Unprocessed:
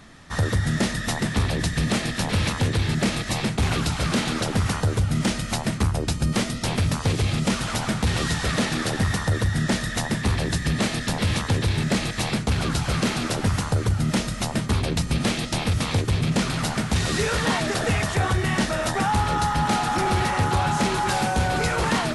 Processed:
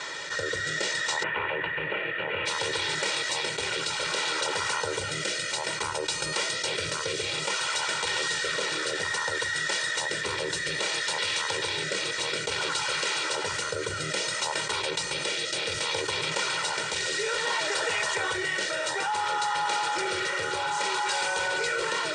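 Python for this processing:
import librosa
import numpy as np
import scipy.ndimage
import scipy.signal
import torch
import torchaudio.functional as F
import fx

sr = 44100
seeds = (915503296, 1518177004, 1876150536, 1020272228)

y = fx.ellip_lowpass(x, sr, hz=fx.steps((0.0, 8000.0), (1.22, 2800.0), (2.45, 8700.0)), order=4, stop_db=50)
y = fx.rotary(y, sr, hz=0.6)
y = scipy.signal.sosfilt(scipy.signal.bessel(2, 690.0, 'highpass', norm='mag', fs=sr, output='sos'), y)
y = y + 0.96 * np.pad(y, (int(2.1 * sr / 1000.0), 0))[:len(y)]
y = fx.env_flatten(y, sr, amount_pct=70)
y = F.gain(torch.from_numpy(y), -4.0).numpy()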